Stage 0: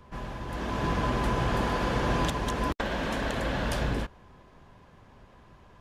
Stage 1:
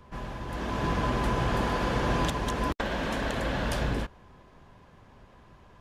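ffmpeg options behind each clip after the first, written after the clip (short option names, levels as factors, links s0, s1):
-af anull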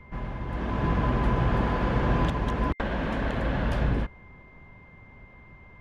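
-af "aeval=exprs='val(0)+0.00251*sin(2*PI*2100*n/s)':c=same,bass=f=250:g=5,treble=f=4000:g=-15"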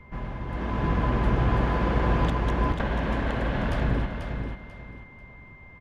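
-af "aecho=1:1:490|980|1470:0.473|0.128|0.0345"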